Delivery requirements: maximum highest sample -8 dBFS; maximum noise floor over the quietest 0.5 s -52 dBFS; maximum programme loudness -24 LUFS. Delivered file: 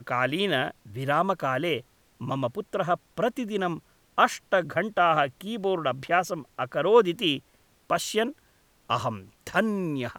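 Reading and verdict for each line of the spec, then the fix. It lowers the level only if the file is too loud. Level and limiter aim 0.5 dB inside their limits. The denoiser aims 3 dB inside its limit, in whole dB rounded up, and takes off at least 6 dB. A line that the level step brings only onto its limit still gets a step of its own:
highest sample -5.5 dBFS: fail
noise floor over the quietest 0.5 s -63 dBFS: pass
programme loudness -26.5 LUFS: pass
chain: peak limiter -8.5 dBFS

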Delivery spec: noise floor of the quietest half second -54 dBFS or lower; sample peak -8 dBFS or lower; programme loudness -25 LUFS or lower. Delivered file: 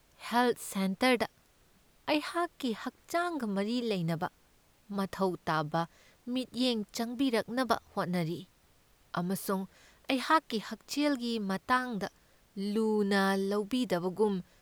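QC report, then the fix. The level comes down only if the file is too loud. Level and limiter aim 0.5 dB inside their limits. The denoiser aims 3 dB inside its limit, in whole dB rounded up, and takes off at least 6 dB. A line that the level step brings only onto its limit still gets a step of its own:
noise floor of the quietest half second -65 dBFS: pass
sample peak -12.5 dBFS: pass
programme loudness -32.0 LUFS: pass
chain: none needed

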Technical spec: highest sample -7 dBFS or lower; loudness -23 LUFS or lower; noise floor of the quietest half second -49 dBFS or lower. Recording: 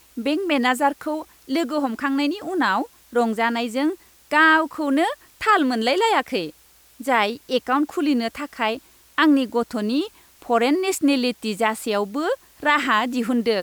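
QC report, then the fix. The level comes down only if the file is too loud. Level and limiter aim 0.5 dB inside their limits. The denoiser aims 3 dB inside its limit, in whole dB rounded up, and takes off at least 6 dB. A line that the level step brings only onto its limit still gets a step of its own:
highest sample -6.0 dBFS: fail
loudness -21.5 LUFS: fail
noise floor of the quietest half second -53 dBFS: pass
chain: trim -2 dB

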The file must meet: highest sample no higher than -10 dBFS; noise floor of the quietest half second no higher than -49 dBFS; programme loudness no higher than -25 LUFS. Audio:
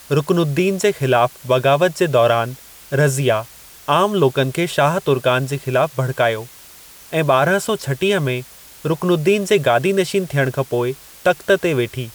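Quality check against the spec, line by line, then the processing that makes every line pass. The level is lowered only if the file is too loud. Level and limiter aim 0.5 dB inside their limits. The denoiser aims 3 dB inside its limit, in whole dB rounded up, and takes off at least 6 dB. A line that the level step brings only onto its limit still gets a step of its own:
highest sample -4.0 dBFS: fail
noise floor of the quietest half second -42 dBFS: fail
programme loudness -18.0 LUFS: fail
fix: trim -7.5 dB

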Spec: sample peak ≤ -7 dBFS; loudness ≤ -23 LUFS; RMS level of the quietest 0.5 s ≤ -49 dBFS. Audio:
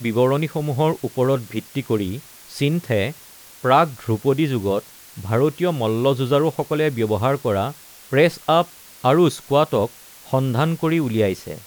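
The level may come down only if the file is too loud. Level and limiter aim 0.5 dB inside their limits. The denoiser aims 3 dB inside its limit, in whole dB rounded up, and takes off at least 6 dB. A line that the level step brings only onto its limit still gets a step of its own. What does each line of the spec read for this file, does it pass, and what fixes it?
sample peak -4.5 dBFS: fail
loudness -20.5 LUFS: fail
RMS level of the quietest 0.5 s -44 dBFS: fail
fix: noise reduction 6 dB, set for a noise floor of -44 dBFS; trim -3 dB

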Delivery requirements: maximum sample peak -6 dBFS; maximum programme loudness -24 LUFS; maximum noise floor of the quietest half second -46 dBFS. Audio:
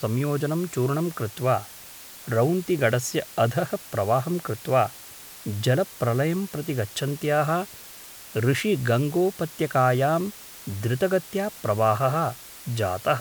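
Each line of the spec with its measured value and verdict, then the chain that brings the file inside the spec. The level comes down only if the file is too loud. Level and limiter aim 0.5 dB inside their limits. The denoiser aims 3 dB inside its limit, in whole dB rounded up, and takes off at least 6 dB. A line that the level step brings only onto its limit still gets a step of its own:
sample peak -8.0 dBFS: pass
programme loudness -25.0 LUFS: pass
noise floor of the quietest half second -43 dBFS: fail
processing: noise reduction 6 dB, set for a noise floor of -43 dBFS

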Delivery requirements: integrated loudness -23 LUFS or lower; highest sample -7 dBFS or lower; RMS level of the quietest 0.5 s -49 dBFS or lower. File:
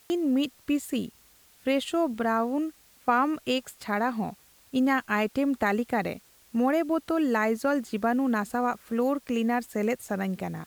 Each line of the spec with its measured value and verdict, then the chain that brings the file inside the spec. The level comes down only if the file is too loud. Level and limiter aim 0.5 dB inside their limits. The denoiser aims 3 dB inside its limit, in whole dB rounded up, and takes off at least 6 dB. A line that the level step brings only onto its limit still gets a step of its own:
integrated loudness -27.5 LUFS: pass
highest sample -10.5 dBFS: pass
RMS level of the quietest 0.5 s -58 dBFS: pass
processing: none needed

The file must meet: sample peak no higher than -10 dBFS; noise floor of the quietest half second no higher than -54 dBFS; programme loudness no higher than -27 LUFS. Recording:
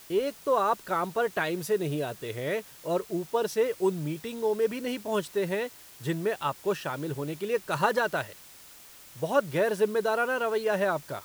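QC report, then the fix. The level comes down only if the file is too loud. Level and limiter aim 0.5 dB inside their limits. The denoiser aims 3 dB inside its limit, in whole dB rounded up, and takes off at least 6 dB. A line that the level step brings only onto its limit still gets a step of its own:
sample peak -11.5 dBFS: pass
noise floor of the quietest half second -50 dBFS: fail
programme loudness -29.0 LUFS: pass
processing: noise reduction 7 dB, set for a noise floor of -50 dBFS

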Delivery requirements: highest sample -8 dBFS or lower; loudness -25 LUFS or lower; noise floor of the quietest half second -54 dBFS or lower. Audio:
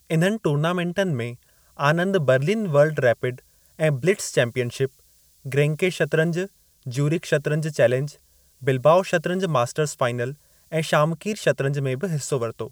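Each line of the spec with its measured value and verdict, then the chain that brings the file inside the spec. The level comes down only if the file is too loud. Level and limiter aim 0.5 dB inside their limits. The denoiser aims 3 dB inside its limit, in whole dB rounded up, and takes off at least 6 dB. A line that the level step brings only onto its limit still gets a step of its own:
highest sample -5.5 dBFS: fail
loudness -22.5 LUFS: fail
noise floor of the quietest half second -57 dBFS: pass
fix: trim -3 dB

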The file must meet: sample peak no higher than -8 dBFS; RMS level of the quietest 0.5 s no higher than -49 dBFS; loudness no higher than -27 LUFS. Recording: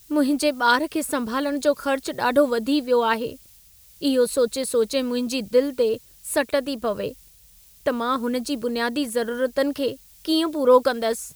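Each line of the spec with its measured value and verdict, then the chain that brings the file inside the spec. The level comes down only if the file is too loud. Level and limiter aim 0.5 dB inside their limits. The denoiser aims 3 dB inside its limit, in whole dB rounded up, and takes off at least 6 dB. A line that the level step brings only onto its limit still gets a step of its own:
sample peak -4.5 dBFS: fail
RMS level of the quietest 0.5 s -52 dBFS: pass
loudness -23.0 LUFS: fail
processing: trim -4.5 dB

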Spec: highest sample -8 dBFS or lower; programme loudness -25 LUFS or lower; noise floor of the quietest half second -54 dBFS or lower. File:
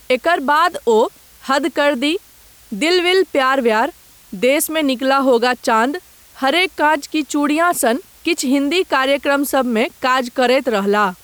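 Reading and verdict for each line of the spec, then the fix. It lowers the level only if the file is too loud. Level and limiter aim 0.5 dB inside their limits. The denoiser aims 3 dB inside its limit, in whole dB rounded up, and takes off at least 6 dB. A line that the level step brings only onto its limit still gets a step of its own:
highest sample -5.0 dBFS: fail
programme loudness -16.5 LUFS: fail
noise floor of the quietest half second -46 dBFS: fail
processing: trim -9 dB

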